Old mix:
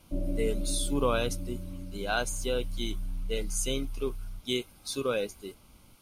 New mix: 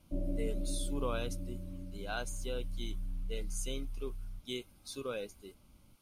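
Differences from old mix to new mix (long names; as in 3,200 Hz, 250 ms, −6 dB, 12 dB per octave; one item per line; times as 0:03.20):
speech −9.5 dB
background −4.0 dB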